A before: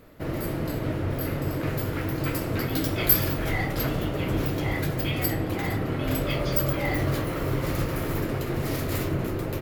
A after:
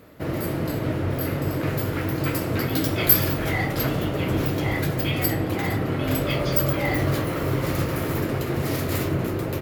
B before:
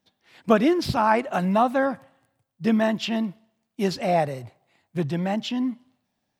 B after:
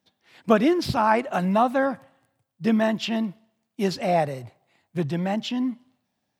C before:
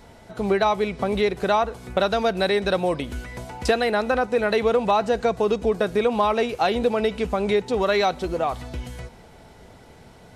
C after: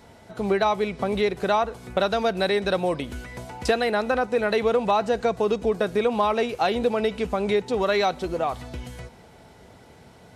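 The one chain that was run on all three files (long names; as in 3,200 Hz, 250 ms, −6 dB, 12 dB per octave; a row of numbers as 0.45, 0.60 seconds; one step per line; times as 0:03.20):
high-pass filter 60 Hz
loudness normalisation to −24 LKFS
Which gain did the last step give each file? +3.0, 0.0, −1.5 decibels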